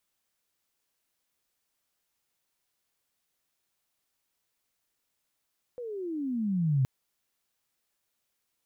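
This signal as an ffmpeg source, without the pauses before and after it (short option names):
-f lavfi -i "aevalsrc='pow(10,(-21+14.5*(t/1.07-1))/20)*sin(2*PI*504*1.07/(-24*log(2)/12)*(exp(-24*log(2)/12*t/1.07)-1))':d=1.07:s=44100"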